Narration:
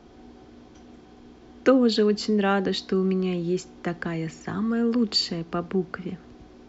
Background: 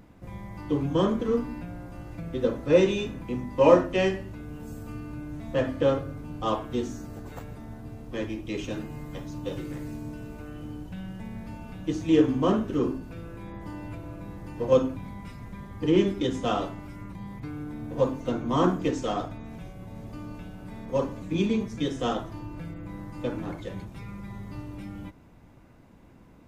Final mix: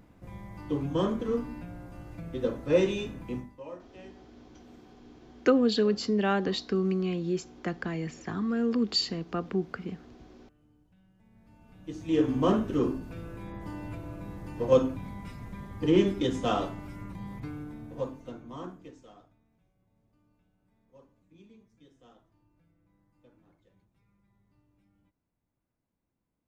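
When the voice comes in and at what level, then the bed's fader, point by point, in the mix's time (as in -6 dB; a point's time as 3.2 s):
3.80 s, -4.0 dB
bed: 3.38 s -4 dB
3.64 s -26 dB
11.14 s -26 dB
12.39 s -1 dB
17.42 s -1 dB
19.49 s -30.5 dB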